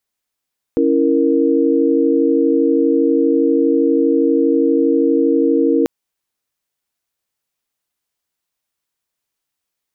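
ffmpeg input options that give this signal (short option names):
-f lavfi -i "aevalsrc='0.168*(sin(2*PI*277.18*t)+sin(2*PI*329.63*t)+sin(2*PI*466.16*t))':d=5.09:s=44100"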